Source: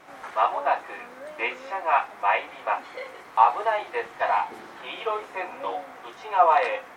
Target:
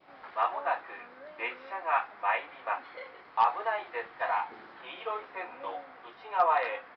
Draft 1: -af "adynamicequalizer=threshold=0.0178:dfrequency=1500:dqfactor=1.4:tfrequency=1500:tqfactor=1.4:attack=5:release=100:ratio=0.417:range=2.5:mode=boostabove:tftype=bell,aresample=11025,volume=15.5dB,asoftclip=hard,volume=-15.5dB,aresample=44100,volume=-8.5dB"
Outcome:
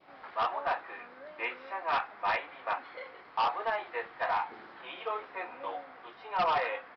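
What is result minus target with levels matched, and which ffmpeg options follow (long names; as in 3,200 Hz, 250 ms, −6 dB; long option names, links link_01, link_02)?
gain into a clipping stage and back: distortion +16 dB
-af "adynamicequalizer=threshold=0.0178:dfrequency=1500:dqfactor=1.4:tfrequency=1500:tqfactor=1.4:attack=5:release=100:ratio=0.417:range=2.5:mode=boostabove:tftype=bell,aresample=11025,volume=6dB,asoftclip=hard,volume=-6dB,aresample=44100,volume=-8.5dB"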